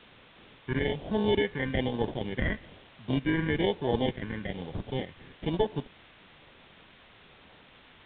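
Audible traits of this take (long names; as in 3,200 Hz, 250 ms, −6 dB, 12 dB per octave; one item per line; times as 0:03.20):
aliases and images of a low sample rate 1,300 Hz, jitter 0%
phaser sweep stages 4, 1.1 Hz, lowest notch 710–2,200 Hz
a quantiser's noise floor 8 bits, dither triangular
A-law companding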